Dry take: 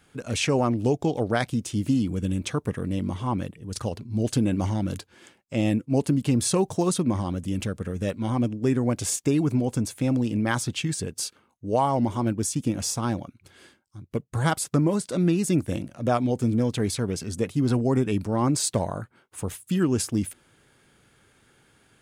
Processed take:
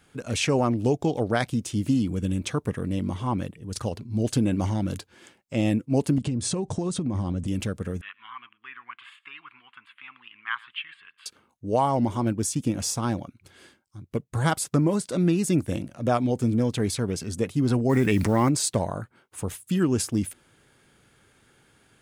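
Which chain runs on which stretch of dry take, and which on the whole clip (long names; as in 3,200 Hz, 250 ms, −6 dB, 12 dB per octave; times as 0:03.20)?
0:06.18–0:07.47: Butterworth low-pass 9,500 Hz 48 dB per octave + low-shelf EQ 410 Hz +8 dB + downward compressor 10 to 1, threshold −23 dBFS
0:08.01–0:11.26: elliptic band-pass filter 1,100–3,100 Hz + single-tap delay 114 ms −22.5 dB
0:17.89–0:18.49: parametric band 2,000 Hz +12 dB 0.43 octaves + noise that follows the level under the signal 32 dB + envelope flattener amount 70%
whole clip: no processing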